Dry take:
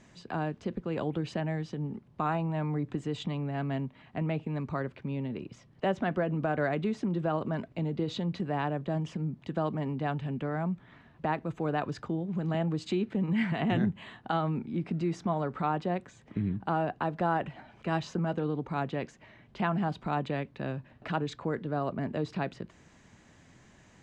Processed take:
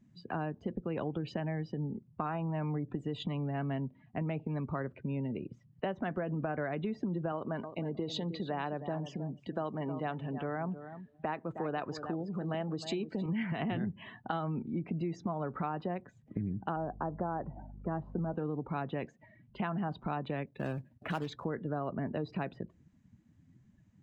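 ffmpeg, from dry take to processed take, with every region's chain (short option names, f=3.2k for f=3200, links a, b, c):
-filter_complex "[0:a]asettb=1/sr,asplit=3[a][b][c];[a]atrim=end=7.324[d];[b]atrim=start=7.32:end=13.26,asetpts=PTS-STARTPTS,afade=t=in:d=0.004:c=qsin,afade=t=out:st=5.936:d=0.004:c=qsin,bass=f=250:g=-6,treble=f=4k:g=5,aecho=1:1:313|626:0.237|0.0403,atrim=end_sample=261954[e];[c]atrim=start=13.256[f];[d][e]acrossfade=d=0.004:c1=hsin:c2=qsin[g];[g][f]acrossfade=d=0.004:c1=qsin:c2=hsin,asettb=1/sr,asplit=3[h][i][j];[h]atrim=end=16.764[k];[i]atrim=start=16.76:end=18.34,asetpts=PTS-STARTPTS,afade=t=in:d=0.004:c=qsin,afade=t=out:st=1.576:d=0.004:c=qsin,lowpass=1.1k,aeval=exprs='val(0)+0.00447*(sin(2*PI*50*n/s)+sin(2*PI*2*50*n/s)/2+sin(2*PI*3*50*n/s)/3+sin(2*PI*4*50*n/s)/4+sin(2*PI*5*50*n/s)/5)':c=same[l];[j]atrim=start=18.336[m];[k][l]acrossfade=d=0.004:c1=hsin:c2=qsin[n];[n][m]acrossfade=d=0.004:c1=qsin:c2=hsin,asettb=1/sr,asplit=3[o][p][q];[o]atrim=end=20.464[r];[p]atrim=start=20.46:end=21.45,asetpts=PTS-STARTPTS,afade=t=in:d=0.004:c=qsin,afade=t=out:st=0.986:d=0.004:c=qsin,highpass=41,agate=range=-33dB:threshold=-55dB:ratio=3:release=100:detection=peak,acrusher=bits=3:mode=log:mix=0:aa=0.000001[s];[q]atrim=start=21.446[t];[r][s]acrossfade=d=0.004:c1=hsin:c2=qsin[u];[u][t]acrossfade=d=0.004:c1=qsin:c2=hsin,afftdn=nr=22:nf=-48,acompressor=threshold=-31dB:ratio=6"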